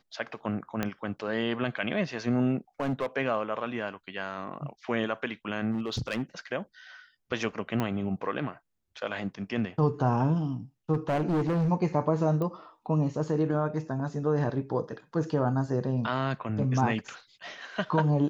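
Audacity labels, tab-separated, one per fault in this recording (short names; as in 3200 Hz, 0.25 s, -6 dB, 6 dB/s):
0.830000	0.830000	pop -14 dBFS
2.800000	3.060000	clipped -24.5 dBFS
5.710000	6.220000	clipped -25.5 dBFS
7.800000	7.800000	pop -16 dBFS
10.930000	11.700000	clipped -23.5 dBFS
12.420000	12.420000	pop -21 dBFS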